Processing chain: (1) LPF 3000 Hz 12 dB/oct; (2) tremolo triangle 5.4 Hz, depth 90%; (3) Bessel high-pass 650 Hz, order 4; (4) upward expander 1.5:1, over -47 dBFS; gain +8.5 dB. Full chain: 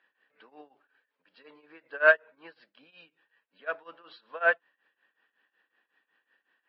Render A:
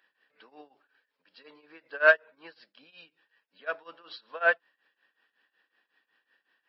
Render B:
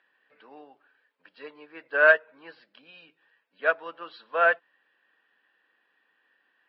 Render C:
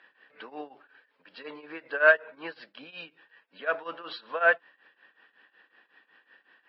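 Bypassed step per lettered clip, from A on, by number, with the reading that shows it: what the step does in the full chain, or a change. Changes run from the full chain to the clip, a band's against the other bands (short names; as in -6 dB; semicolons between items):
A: 1, 4 kHz band +4.0 dB; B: 2, crest factor change -2.0 dB; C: 4, 250 Hz band +7.0 dB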